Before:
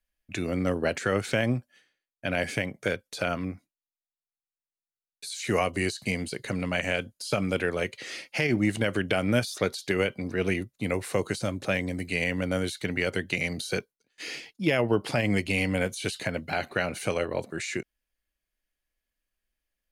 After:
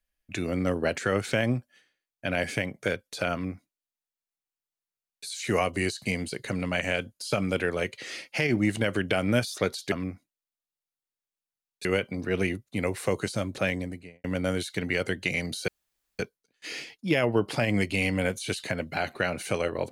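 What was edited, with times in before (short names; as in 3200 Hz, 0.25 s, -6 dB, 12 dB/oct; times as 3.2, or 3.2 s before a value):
3.33–5.26 copy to 9.92
11.76–12.31 studio fade out
13.75 insert room tone 0.51 s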